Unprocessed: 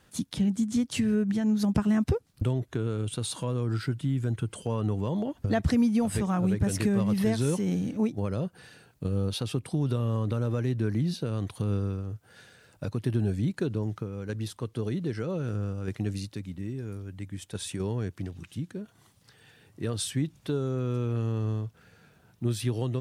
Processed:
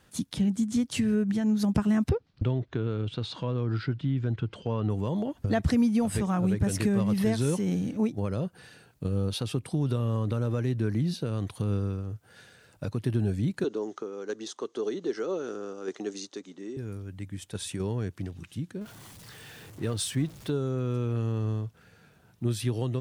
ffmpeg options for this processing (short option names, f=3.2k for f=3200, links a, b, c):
-filter_complex "[0:a]asettb=1/sr,asplit=3[a][b][c];[a]atrim=end=2.094[d];[b]atrim=start=2.09:end=4.9,asetpts=PTS-STARTPTS,afade=t=in:d=0.004:c=qsin,afade=t=out:st=2.806:d=0.004:c=qsin,lowpass=f=4.7k:w=0.5412,lowpass=f=4.7k:w=1.3066[e];[c]atrim=start=4.896[f];[d][e]acrossfade=d=0.004:c1=hsin:c2=qsin[g];[g][f]acrossfade=d=0.004:c1=qsin:c2=hsin,asettb=1/sr,asplit=3[h][i][j];[h]atrim=end=13.644[k];[i]atrim=start=13.64:end=16.77,asetpts=PTS-STARTPTS,afade=t=in:d=0.004:c=qsin,afade=t=out:st=3.126:d=0.004:c=qsin,highpass=f=270:w=0.5412,highpass=f=270:w=1.3066,equalizer=f=400:t=q:w=4:g=7,equalizer=f=770:t=q:w=4:g=3,equalizer=f=1.2k:t=q:w=4:g=4,equalizer=f=2.4k:t=q:w=4:g=-5,equalizer=f=3.5k:t=q:w=4:g=3,equalizer=f=6.4k:t=q:w=4:g=10,lowpass=f=7.7k:w=0.5412,lowpass=f=7.7k:w=1.3066[l];[j]atrim=start=16.766[m];[k][l]acrossfade=d=0.004:c1=hsin:c2=qsin[n];[n][m]acrossfade=d=0.004:c1=qsin:c2=hsin,asettb=1/sr,asplit=3[o][p][q];[o]atrim=end=18.814[r];[p]atrim=start=18.81:end=20.5,asetpts=PTS-STARTPTS,afade=t=in:d=0.004:c=qsin,afade=t=out:st=1.686:d=0.004:c=qsin,aeval=exprs='val(0)+0.5*0.00631*sgn(val(0))':c=same[s];[q]atrim=start=20.496[t];[r][s]acrossfade=d=0.004:c1=hsin:c2=qsin[u];[u][t]acrossfade=d=0.004:c1=qsin:c2=hsin"